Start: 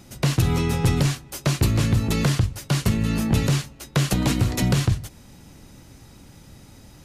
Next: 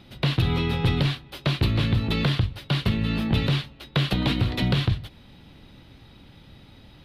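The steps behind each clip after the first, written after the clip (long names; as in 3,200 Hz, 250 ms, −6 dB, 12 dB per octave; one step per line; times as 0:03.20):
high shelf with overshoot 5,000 Hz −11.5 dB, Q 3
level −2.5 dB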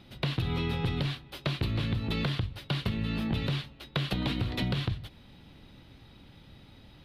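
downward compressor, threshold −22 dBFS, peak gain reduction 5.5 dB
level −4 dB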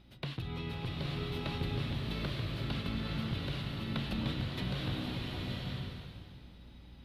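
mains hum 60 Hz, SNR 19 dB
slow-attack reverb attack 970 ms, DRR −2.5 dB
level −9 dB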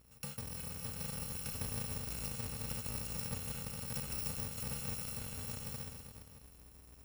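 samples in bit-reversed order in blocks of 128 samples
level −5 dB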